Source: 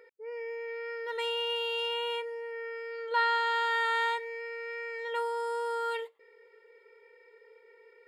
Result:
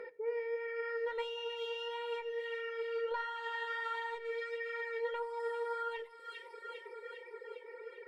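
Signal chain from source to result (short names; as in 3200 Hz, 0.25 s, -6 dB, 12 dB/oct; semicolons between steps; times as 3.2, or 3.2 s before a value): in parallel at -5 dB: one-sided clip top -36.5 dBFS; on the sum: notches 50/100/150/200/250/300/350/400 Hz; thin delay 0.402 s, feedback 61%, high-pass 1800 Hz, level -10.5 dB; reverb removal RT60 1.2 s; compressor 6:1, threshold -44 dBFS, peak gain reduction 21 dB; high shelf 2700 Hz -12 dB; on a send at -14 dB: reverb RT60 0.85 s, pre-delay 6 ms; on the sum: flange 1.5 Hz, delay 4.7 ms, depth 4.5 ms, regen +57%; high shelf 8600 Hz -6.5 dB; gain +13 dB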